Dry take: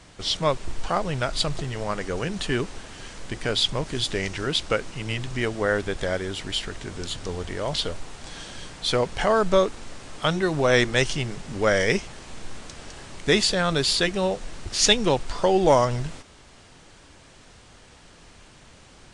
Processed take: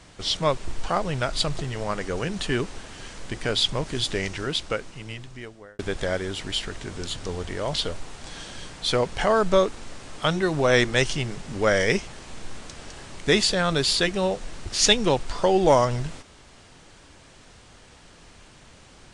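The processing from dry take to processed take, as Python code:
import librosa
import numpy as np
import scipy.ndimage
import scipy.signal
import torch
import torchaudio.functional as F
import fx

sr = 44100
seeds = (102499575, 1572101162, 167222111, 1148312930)

y = fx.edit(x, sr, fx.fade_out_span(start_s=4.17, length_s=1.62), tone=tone)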